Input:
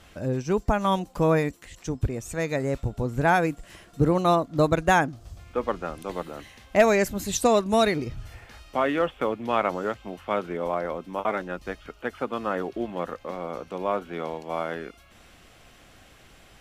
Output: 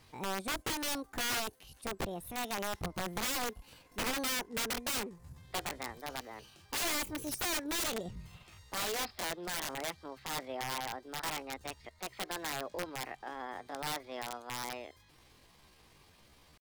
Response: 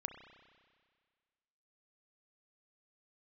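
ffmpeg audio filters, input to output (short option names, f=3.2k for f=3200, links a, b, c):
-af "asetrate=66075,aresample=44100,atempo=0.66742,aeval=exprs='(mod(10*val(0)+1,2)-1)/10':c=same,volume=-9dB"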